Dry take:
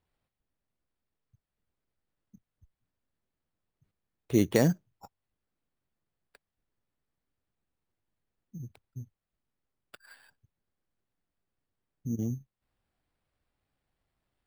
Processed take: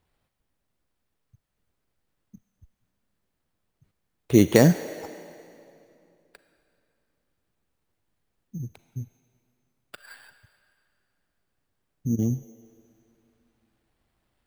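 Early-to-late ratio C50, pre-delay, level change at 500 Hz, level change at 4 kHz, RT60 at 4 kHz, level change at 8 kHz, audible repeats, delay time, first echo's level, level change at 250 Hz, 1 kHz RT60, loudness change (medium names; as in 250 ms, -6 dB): 11.0 dB, 34 ms, +7.5 dB, +8.0 dB, 2.2 s, +8.0 dB, no echo, no echo, no echo, +7.5 dB, 2.6 s, +6.5 dB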